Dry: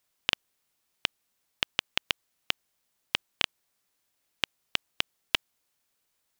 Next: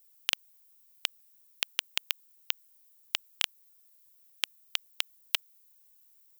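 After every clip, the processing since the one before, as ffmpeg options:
ffmpeg -i in.wav -af "aemphasis=mode=production:type=riaa,volume=-7dB" out.wav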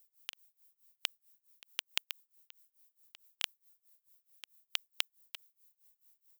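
ffmpeg -i in.wav -af "tremolo=f=4.6:d=0.94,volume=-2dB" out.wav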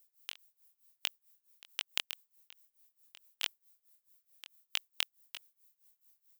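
ffmpeg -i in.wav -af "flanger=delay=19.5:depth=4.5:speed=1.7,volume=3.5dB" out.wav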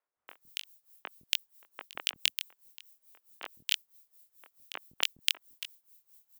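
ffmpeg -i in.wav -filter_complex "[0:a]acrossover=split=230|1700[link_01][link_02][link_03];[link_01]adelay=160[link_04];[link_03]adelay=280[link_05];[link_04][link_02][link_05]amix=inputs=3:normalize=0,volume=6.5dB" out.wav

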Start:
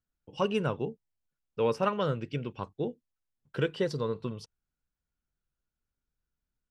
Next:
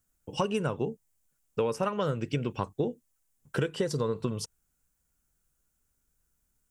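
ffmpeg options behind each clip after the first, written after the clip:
ffmpeg -i in.wav -af "highshelf=frequency=5700:width_type=q:width=1.5:gain=8.5,acompressor=threshold=-34dB:ratio=10,volume=9dB" out.wav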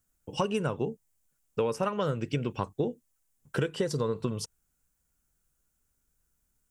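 ffmpeg -i in.wav -af anull out.wav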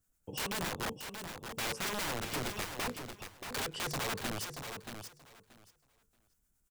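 ffmpeg -i in.wav -filter_complex "[0:a]acrossover=split=730[link_01][link_02];[link_01]aeval=exprs='val(0)*(1-0.5/2+0.5/2*cos(2*PI*9.2*n/s))':channel_layout=same[link_03];[link_02]aeval=exprs='val(0)*(1-0.5/2-0.5/2*cos(2*PI*9.2*n/s))':channel_layout=same[link_04];[link_03][link_04]amix=inputs=2:normalize=0,aeval=exprs='(mod(33.5*val(0)+1,2)-1)/33.5':channel_layout=same,aecho=1:1:630|1260|1890:0.422|0.0717|0.0122" out.wav

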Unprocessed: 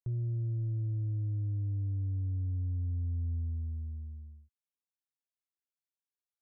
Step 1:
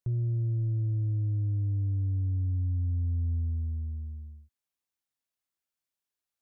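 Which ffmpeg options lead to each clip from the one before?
ffmpeg -i in.wav -af "bandreject=frequency=450:width=14,volume=4.5dB" out.wav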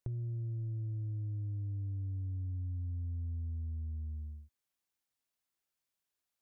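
ffmpeg -i in.wav -af "acompressor=threshold=-39dB:ratio=5,volume=1dB" out.wav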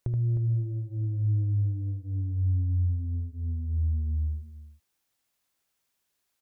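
ffmpeg -i in.wav -af "aecho=1:1:77|310:0.596|0.335,volume=8.5dB" out.wav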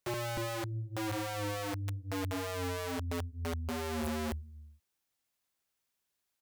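ffmpeg -i in.wav -af "aeval=exprs='(mod(21.1*val(0)+1,2)-1)/21.1':channel_layout=same,volume=-5.5dB" out.wav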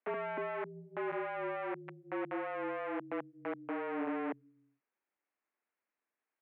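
ffmpeg -i in.wav -af "highpass=frequency=170:width_type=q:width=0.5412,highpass=frequency=170:width_type=q:width=1.307,lowpass=frequency=2300:width_type=q:width=0.5176,lowpass=frequency=2300:width_type=q:width=0.7071,lowpass=frequency=2300:width_type=q:width=1.932,afreqshift=57" out.wav

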